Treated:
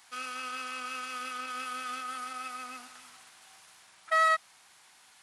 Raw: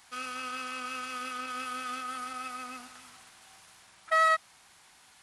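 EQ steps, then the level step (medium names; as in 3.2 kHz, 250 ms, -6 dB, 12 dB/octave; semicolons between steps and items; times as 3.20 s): high-pass 100 Hz 6 dB/octave; bass shelf 430 Hz -5.5 dB; 0.0 dB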